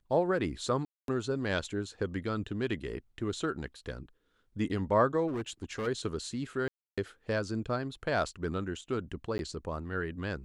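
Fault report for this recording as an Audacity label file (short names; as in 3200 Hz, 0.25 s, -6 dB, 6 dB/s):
0.850000	1.080000	gap 0.232 s
5.270000	5.880000	clipped -31 dBFS
6.680000	6.980000	gap 0.296 s
9.380000	9.390000	gap 11 ms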